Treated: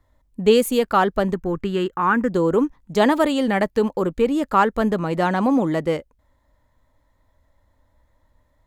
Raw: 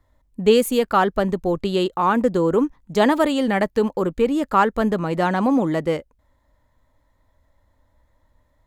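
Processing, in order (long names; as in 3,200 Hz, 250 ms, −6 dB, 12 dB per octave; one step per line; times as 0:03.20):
0:01.34–0:02.30: graphic EQ with 15 bands 630 Hz −11 dB, 1,600 Hz +8 dB, 4,000 Hz −12 dB, 10,000 Hz −9 dB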